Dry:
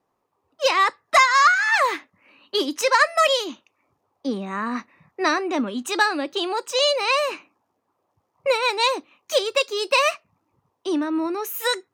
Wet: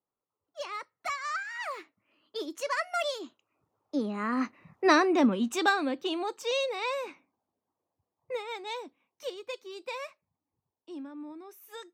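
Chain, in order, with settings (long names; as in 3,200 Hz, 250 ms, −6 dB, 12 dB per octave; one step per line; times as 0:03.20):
source passing by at 0:04.92, 26 m/s, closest 15 metres
tilt shelving filter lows +3 dB, about 680 Hz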